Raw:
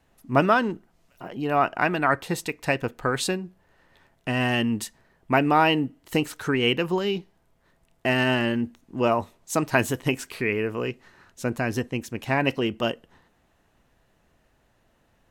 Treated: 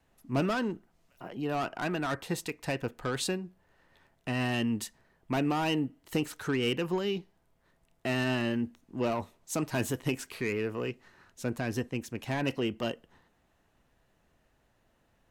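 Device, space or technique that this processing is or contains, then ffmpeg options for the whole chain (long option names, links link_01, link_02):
one-band saturation: -filter_complex "[0:a]acrossover=split=420|3800[link_01][link_02][link_03];[link_02]asoftclip=type=tanh:threshold=-25dB[link_04];[link_01][link_04][link_03]amix=inputs=3:normalize=0,volume=-5dB"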